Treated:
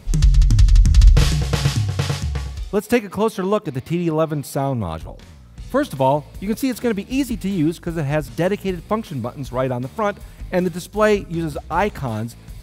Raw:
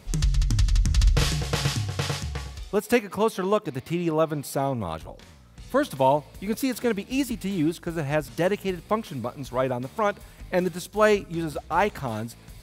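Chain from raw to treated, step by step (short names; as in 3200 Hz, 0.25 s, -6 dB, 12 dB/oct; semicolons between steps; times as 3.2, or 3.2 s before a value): low shelf 210 Hz +7.5 dB; gain +2.5 dB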